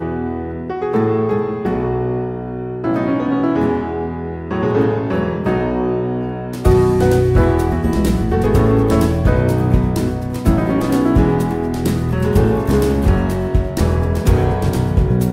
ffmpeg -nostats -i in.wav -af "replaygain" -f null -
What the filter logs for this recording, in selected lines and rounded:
track_gain = -0.9 dB
track_peak = 0.571